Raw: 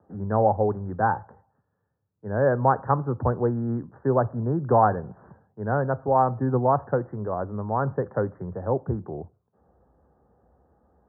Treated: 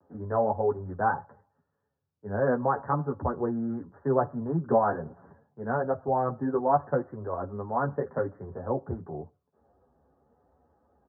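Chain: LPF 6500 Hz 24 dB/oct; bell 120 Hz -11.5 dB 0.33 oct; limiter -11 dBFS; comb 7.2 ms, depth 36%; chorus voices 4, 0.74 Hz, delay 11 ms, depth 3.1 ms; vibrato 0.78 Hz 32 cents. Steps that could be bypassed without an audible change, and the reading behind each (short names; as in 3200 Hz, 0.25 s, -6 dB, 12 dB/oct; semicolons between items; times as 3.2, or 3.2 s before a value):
LPF 6500 Hz: input band ends at 1700 Hz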